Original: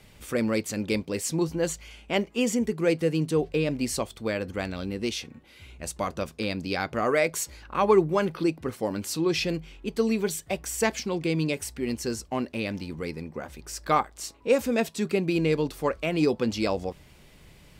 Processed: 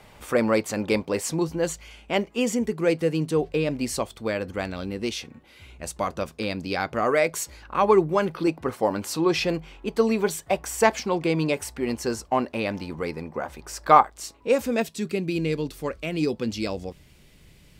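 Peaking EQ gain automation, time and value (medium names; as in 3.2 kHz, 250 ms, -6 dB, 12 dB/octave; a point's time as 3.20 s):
peaking EQ 890 Hz 1.8 oct
+11.5 dB
from 1.34 s +3.5 dB
from 8.47 s +10 dB
from 14.10 s +1.5 dB
from 14.82 s -6 dB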